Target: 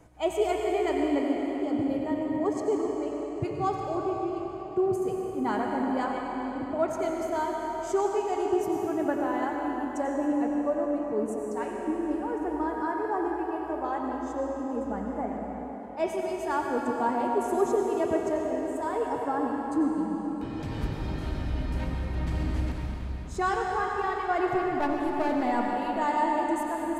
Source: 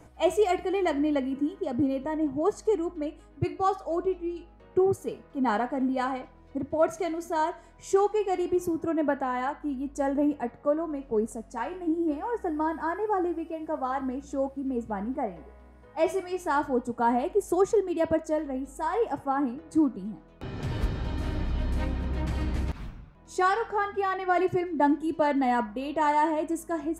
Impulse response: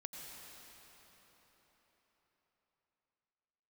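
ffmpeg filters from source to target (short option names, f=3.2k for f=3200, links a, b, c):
-filter_complex "[0:a]asettb=1/sr,asplit=3[a][b][c];[a]atrim=end=24.534[d];[b]atrim=start=24.53:end=25.43,asetpts=PTS-STARTPTS,afade=t=in:d=0.004:c=qsin,afade=t=out:st=0.896:d=0.004:c=qsin,aeval=exprs='clip(val(0),-1,0.0398)':c=same[e];[c]atrim=start=25.426[f];[d][e]acrossfade=d=0.004:c1=hsin:c2=qsin[g];[g][f]acrossfade=d=0.004:c1=qsin:c2=hsin[h];[1:a]atrim=start_sample=2205[i];[h][i]afir=irnorm=-1:irlink=0,volume=2dB"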